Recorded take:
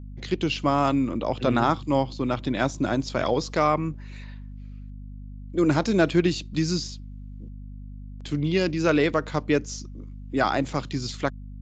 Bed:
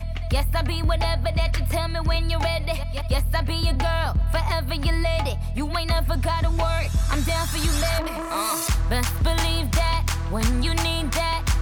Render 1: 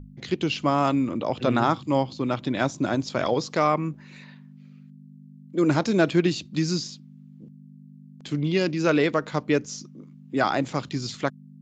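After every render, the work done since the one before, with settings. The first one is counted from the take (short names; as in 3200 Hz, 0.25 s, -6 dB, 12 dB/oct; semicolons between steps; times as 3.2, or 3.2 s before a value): notches 50/100 Hz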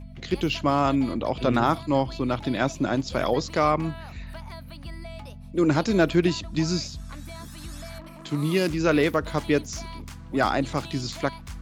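add bed -17 dB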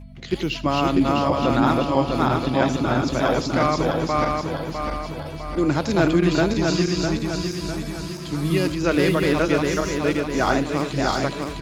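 regenerating reverse delay 0.327 s, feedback 69%, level -0.5 dB; echo 80 ms -17 dB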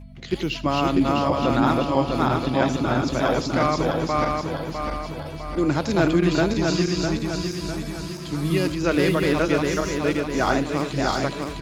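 gain -1 dB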